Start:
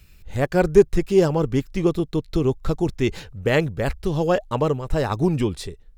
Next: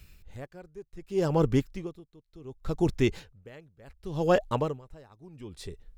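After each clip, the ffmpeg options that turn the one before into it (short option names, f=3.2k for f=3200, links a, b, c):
-af "aeval=exprs='val(0)*pow(10,-30*(0.5-0.5*cos(2*PI*0.68*n/s))/20)':c=same,volume=-1.5dB"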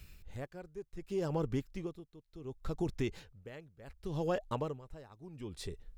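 -af "acompressor=threshold=-34dB:ratio=2.5,volume=-1dB"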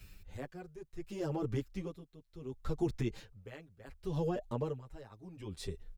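-filter_complex "[0:a]acrossover=split=570[a][b];[b]alimiter=level_in=12.5dB:limit=-24dB:level=0:latency=1:release=104,volume=-12.5dB[c];[a][c]amix=inputs=2:normalize=0,asplit=2[d][e];[e]adelay=7.3,afreqshift=-0.56[f];[d][f]amix=inputs=2:normalize=1,volume=3.5dB"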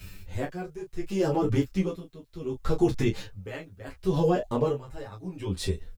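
-af "aecho=1:1:11|21|37:0.631|0.562|0.398,volume=9dB"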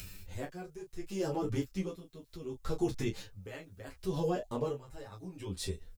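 -af "bass=f=250:g=-1,treble=f=4k:g=6,acompressor=mode=upward:threshold=-32dB:ratio=2.5,volume=-8.5dB"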